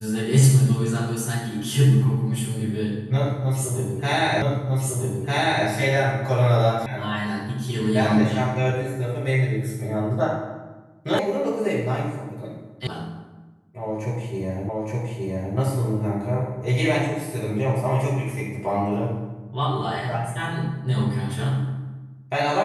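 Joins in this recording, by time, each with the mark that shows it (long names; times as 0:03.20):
0:04.42: the same again, the last 1.25 s
0:06.86: cut off before it has died away
0:11.19: cut off before it has died away
0:12.87: cut off before it has died away
0:14.69: the same again, the last 0.87 s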